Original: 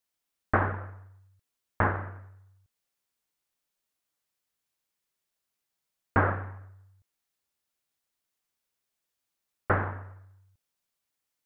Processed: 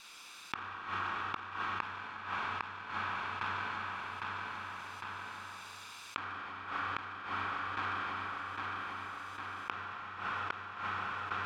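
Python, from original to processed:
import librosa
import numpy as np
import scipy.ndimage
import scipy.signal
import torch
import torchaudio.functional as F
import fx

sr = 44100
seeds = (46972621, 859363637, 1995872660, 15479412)

y = fx.lower_of_two(x, sr, delay_ms=0.82)
y = fx.notch(y, sr, hz=2100.0, q=10.0)
y = fx.echo_feedback(y, sr, ms=805, feedback_pct=30, wet_db=-7.0)
y = fx.rev_schroeder(y, sr, rt60_s=1.9, comb_ms=32, drr_db=0.5)
y = fx.rider(y, sr, range_db=4, speed_s=2.0)
y = fx.low_shelf(y, sr, hz=380.0, db=-6.0)
y = fx.gate_flip(y, sr, shuts_db=-25.0, range_db=-35)
y = scipy.signal.sosfilt(scipy.signal.butter(2, 2800.0, 'lowpass', fs=sr, output='sos'), y)
y = fx.tilt_eq(y, sr, slope=3.5)
y = fx.env_flatten(y, sr, amount_pct=70)
y = y * 10.0 ** (1.0 / 20.0)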